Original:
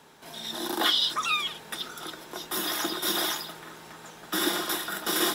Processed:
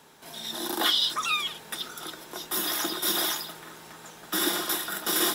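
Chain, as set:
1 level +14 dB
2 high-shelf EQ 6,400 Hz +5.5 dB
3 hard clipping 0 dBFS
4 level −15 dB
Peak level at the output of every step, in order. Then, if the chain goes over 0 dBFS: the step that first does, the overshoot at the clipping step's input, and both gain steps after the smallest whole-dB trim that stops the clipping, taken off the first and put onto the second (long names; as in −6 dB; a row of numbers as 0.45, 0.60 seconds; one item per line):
+2.0, +3.5, 0.0, −15.0 dBFS
step 1, 3.5 dB
step 1 +10 dB, step 4 −11 dB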